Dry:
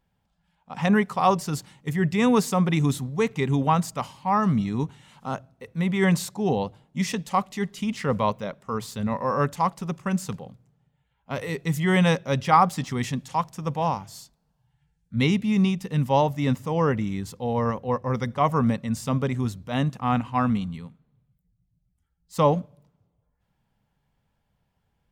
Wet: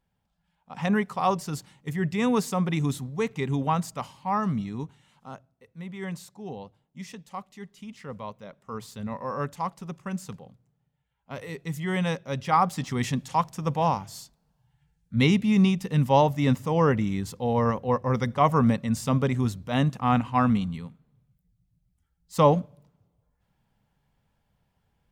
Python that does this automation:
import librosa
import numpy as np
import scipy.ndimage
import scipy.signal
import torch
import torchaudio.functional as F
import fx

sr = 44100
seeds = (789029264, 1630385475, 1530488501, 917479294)

y = fx.gain(x, sr, db=fx.line((4.35, -4.0), (5.68, -14.0), (8.31, -14.0), (8.74, -7.0), (12.26, -7.0), (13.11, 1.0)))